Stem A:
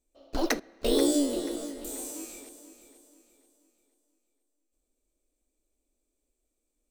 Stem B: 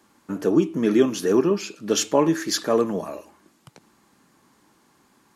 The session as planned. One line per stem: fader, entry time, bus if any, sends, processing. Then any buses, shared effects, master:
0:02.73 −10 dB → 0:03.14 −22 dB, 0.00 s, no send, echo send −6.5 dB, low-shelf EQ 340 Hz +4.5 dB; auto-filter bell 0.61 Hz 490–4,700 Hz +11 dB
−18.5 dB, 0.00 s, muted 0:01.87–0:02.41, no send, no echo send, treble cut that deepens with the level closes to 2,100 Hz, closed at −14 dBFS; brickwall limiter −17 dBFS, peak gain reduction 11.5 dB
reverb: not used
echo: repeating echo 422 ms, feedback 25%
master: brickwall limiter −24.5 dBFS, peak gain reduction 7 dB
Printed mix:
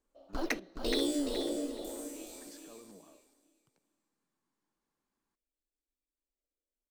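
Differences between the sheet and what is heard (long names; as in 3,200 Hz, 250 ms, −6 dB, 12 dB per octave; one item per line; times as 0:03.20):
stem B −18.5 dB → −28.0 dB
master: missing brickwall limiter −24.5 dBFS, peak gain reduction 7 dB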